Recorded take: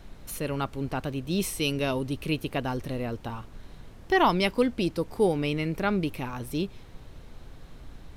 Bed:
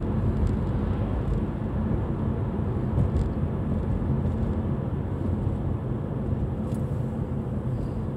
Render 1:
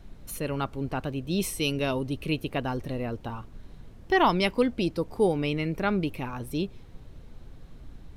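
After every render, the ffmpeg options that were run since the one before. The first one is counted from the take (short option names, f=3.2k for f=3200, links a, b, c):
-af "afftdn=nr=6:nf=-48"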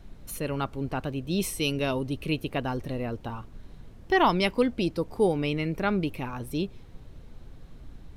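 -af anull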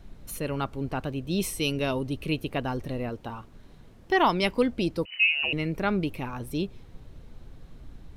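-filter_complex "[0:a]asettb=1/sr,asplit=3[a][b][c];[a]atrim=end=3.094[d];[b]atrim=start=3.09:end=4.43,asetpts=PTS-STARTPTS,afade=t=in:d=0.004:c=qsin,afade=t=out:st=1.336:d=0.004:c=qsin,lowshelf=f=130:g=-7[e];[c]atrim=start=4.426[f];[d][e]acrossfade=d=0.004:c1=hsin:c2=qsin[g];[g][f]acrossfade=d=0.004:c1=qsin:c2=hsin,asettb=1/sr,asplit=3[h][i][j];[h]atrim=end=5.054[k];[i]atrim=start=5.05:end=5.53,asetpts=PTS-STARTPTS,afade=t=in:d=0.004:c=qsin,afade=t=out:st=0.476:d=0.004:c=qsin,lowpass=f=2.6k:t=q:w=0.5098,lowpass=f=2.6k:t=q:w=0.6013,lowpass=f=2.6k:t=q:w=0.9,lowpass=f=2.6k:t=q:w=2.563,afreqshift=-3000[l];[j]atrim=start=5.526[m];[k][l]acrossfade=d=0.004:c1=hsin:c2=qsin[n];[n][m]acrossfade=d=0.004:c1=qsin:c2=hsin"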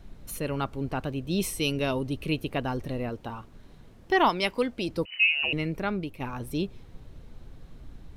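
-filter_complex "[0:a]asettb=1/sr,asplit=3[a][b][c];[a]atrim=end=4.294[d];[b]atrim=start=4.29:end=4.89,asetpts=PTS-STARTPTS,afade=t=in:d=0.004:c=qsin,afade=t=out:st=0.596:d=0.004:c=qsin,lowshelf=f=310:g=-8.5[e];[c]atrim=start=4.886[f];[d][e]acrossfade=d=0.004:c1=hsin:c2=qsin[g];[g][f]acrossfade=d=0.004:c1=qsin:c2=hsin,asplit=2[h][i];[h]atrim=end=6.2,asetpts=PTS-STARTPTS,afade=t=out:st=5.57:d=0.63:silence=0.375837[j];[i]atrim=start=6.2,asetpts=PTS-STARTPTS,afade=t=in:d=0.004:c=hsin:silence=0.375837[k];[j][k]concat=n=2:v=0:a=1"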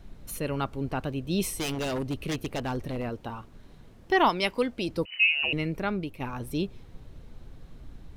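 -filter_complex "[0:a]asettb=1/sr,asplit=3[a][b][c];[a]atrim=end=1.504[d];[b]atrim=start=1.5:end=3.21,asetpts=PTS-STARTPTS,afade=t=in:d=0.004:c=qsin,afade=t=out:st=1.706:d=0.004:c=qsin,aeval=exprs='0.0596*(abs(mod(val(0)/0.0596+3,4)-2)-1)':c=same[e];[c]atrim=start=3.206[f];[d][e]acrossfade=d=0.004:c1=hsin:c2=qsin[g];[g][f]acrossfade=d=0.004:c1=qsin:c2=hsin"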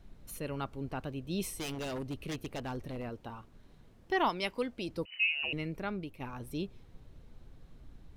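-af "volume=-7.5dB"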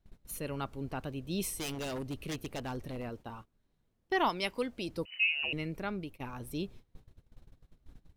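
-af "agate=range=-18dB:threshold=-48dB:ratio=16:detection=peak,highshelf=f=5.8k:g=5"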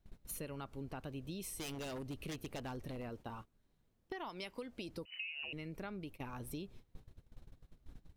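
-af "alimiter=level_in=4dB:limit=-24dB:level=0:latency=1:release=287,volume=-4dB,acompressor=threshold=-41dB:ratio=6"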